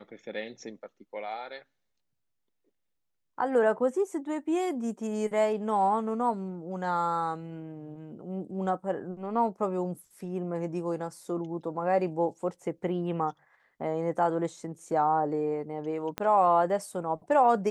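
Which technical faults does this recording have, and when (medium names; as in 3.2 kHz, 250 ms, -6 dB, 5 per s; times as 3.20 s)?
16.18 s: pop -17 dBFS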